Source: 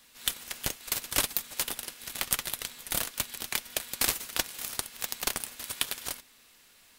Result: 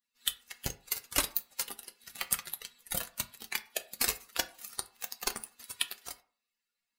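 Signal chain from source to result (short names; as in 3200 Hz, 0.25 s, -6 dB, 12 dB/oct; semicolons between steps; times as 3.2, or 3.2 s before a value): per-bin expansion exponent 2; in parallel at +0.5 dB: compressor, threshold -46 dBFS, peak gain reduction 20.5 dB; on the sum: reverb RT60 0.45 s, pre-delay 7 ms, DRR 9 dB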